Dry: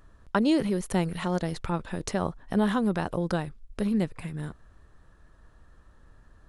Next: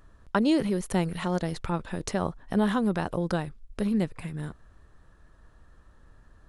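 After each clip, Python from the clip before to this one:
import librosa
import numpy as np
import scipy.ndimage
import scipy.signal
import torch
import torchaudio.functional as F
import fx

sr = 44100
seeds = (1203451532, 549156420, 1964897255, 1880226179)

y = x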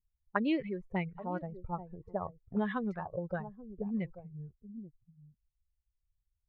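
y = fx.bin_expand(x, sr, power=2.0)
y = y + 10.0 ** (-16.5 / 20.0) * np.pad(y, (int(834 * sr / 1000.0), 0))[:len(y)]
y = fx.envelope_lowpass(y, sr, base_hz=210.0, top_hz=2300.0, q=2.9, full_db=-25.0, direction='up')
y = y * librosa.db_to_amplitude(-6.0)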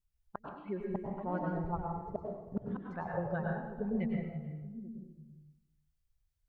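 y = fx.gate_flip(x, sr, shuts_db=-23.0, range_db=-38)
y = y + 10.0 ** (-17.0 / 20.0) * np.pad(y, (int(325 * sr / 1000.0), 0))[:len(y)]
y = fx.rev_plate(y, sr, seeds[0], rt60_s=0.84, hf_ratio=0.85, predelay_ms=85, drr_db=-1.0)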